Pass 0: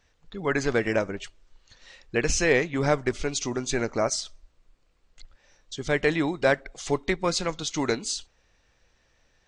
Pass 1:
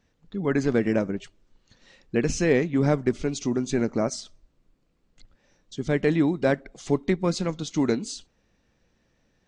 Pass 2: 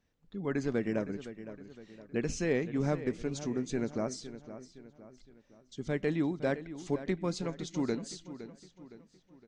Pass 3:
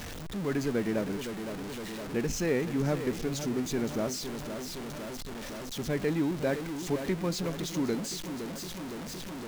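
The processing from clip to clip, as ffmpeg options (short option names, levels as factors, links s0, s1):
-af "equalizer=f=210:w=0.64:g=14,volume=0.501"
-filter_complex "[0:a]asplit=2[s0][s1];[s1]adelay=513,lowpass=f=5000:p=1,volume=0.224,asplit=2[s2][s3];[s3]adelay=513,lowpass=f=5000:p=1,volume=0.45,asplit=2[s4][s5];[s5]adelay=513,lowpass=f=5000:p=1,volume=0.45,asplit=2[s6][s7];[s7]adelay=513,lowpass=f=5000:p=1,volume=0.45[s8];[s0][s2][s4][s6][s8]amix=inputs=5:normalize=0,volume=0.355"
-af "aeval=exprs='val(0)+0.5*0.02*sgn(val(0))':c=same"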